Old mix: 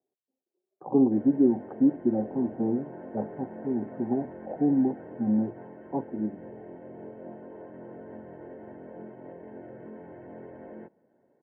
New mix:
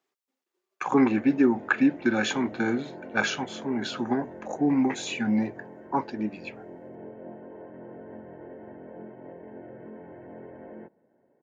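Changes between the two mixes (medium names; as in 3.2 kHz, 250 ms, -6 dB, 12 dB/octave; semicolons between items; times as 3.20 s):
speech: remove steep low-pass 730 Hz 36 dB/octave; master: remove distance through air 160 m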